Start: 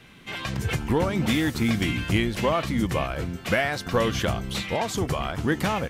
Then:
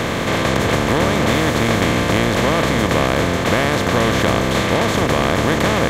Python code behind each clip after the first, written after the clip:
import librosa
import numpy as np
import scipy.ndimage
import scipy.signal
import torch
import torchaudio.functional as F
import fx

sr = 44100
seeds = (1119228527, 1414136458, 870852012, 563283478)

y = fx.bin_compress(x, sr, power=0.2)
y = y * 10.0 ** (-1.0 / 20.0)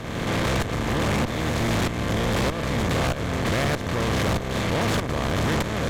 y = fx.low_shelf(x, sr, hz=200.0, db=8.5)
y = fx.tremolo_shape(y, sr, shape='saw_up', hz=1.6, depth_pct=85)
y = fx.tube_stage(y, sr, drive_db=23.0, bias=0.75)
y = y * 10.0 ** (2.5 / 20.0)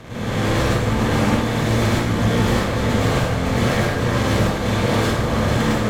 y = fx.rev_plate(x, sr, seeds[0], rt60_s=1.0, hf_ratio=0.75, predelay_ms=90, drr_db=-9.5)
y = y * 10.0 ** (-6.0 / 20.0)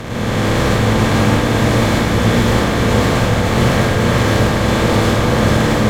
y = fx.bin_compress(x, sr, power=0.6)
y = y + 10.0 ** (-4.5 / 20.0) * np.pad(y, (int(443 * sr / 1000.0), 0))[:len(y)]
y = y * 10.0 ** (1.0 / 20.0)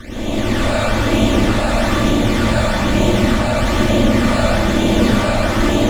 y = fx.lower_of_two(x, sr, delay_ms=3.4)
y = fx.phaser_stages(y, sr, stages=12, low_hz=310.0, high_hz=1800.0, hz=1.1, feedback_pct=25)
y = fx.rev_freeverb(y, sr, rt60_s=1.2, hf_ratio=0.45, predelay_ms=70, drr_db=-6.5)
y = y * 10.0 ** (-4.5 / 20.0)